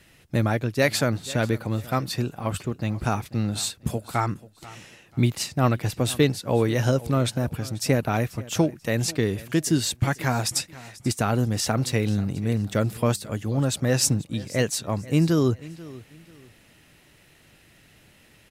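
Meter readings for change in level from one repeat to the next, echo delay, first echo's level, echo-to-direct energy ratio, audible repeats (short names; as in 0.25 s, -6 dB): -11.0 dB, 0.488 s, -19.5 dB, -19.0 dB, 2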